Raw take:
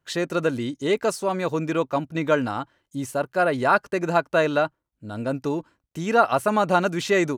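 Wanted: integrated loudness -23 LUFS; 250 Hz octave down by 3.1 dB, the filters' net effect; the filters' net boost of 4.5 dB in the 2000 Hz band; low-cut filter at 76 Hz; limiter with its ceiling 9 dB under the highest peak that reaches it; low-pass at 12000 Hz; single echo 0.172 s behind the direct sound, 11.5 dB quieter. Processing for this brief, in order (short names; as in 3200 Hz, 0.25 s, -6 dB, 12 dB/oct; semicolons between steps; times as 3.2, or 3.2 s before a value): HPF 76 Hz; LPF 12000 Hz; bell 250 Hz -4.5 dB; bell 2000 Hz +6.5 dB; limiter -12 dBFS; echo 0.172 s -11.5 dB; gain +2 dB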